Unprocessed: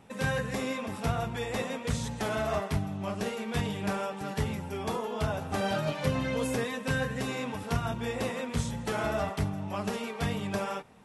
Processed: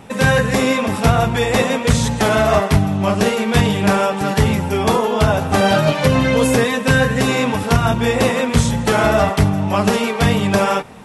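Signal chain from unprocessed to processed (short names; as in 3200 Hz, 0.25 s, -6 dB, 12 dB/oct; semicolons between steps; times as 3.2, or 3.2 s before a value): in parallel at -2.5 dB: vocal rider; on the sum: maximiser +12.5 dB; gain -1 dB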